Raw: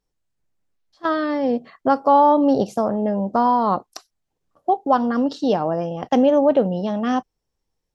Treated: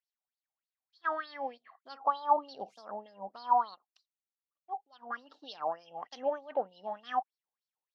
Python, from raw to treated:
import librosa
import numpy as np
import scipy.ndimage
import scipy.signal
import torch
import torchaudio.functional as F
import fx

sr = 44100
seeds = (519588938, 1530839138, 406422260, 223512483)

y = fx.filter_lfo_bandpass(x, sr, shape='sine', hz=3.3, low_hz=740.0, high_hz=4600.0, q=7.6)
y = fx.upward_expand(y, sr, threshold_db=-52.0, expansion=1.5, at=(3.74, 5.09), fade=0.02)